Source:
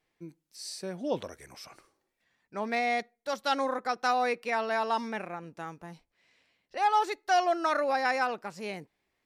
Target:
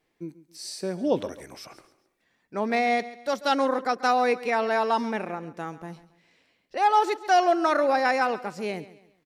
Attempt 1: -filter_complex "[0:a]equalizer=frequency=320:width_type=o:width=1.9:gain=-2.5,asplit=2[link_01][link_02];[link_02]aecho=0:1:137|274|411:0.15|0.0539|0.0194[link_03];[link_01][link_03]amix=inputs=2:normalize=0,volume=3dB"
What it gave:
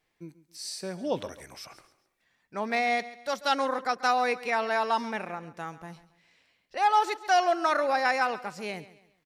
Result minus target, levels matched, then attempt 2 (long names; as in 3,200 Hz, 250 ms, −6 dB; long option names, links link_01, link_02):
250 Hz band −4.0 dB
-filter_complex "[0:a]equalizer=frequency=320:width_type=o:width=1.9:gain=5.5,asplit=2[link_01][link_02];[link_02]aecho=0:1:137|274|411:0.15|0.0539|0.0194[link_03];[link_01][link_03]amix=inputs=2:normalize=0,volume=3dB"